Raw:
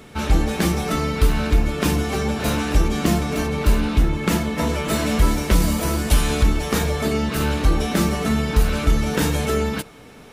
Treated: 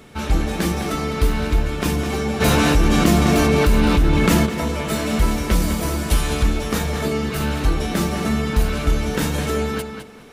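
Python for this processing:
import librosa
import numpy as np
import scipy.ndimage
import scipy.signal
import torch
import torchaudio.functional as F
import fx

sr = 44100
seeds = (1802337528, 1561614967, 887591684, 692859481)

p1 = x + fx.echo_tape(x, sr, ms=207, feedback_pct=23, wet_db=-5.5, lp_hz=5400.0, drive_db=9.0, wow_cents=10, dry=0)
p2 = fx.env_flatten(p1, sr, amount_pct=70, at=(2.4, 4.45), fade=0.02)
y = F.gain(torch.from_numpy(p2), -1.5).numpy()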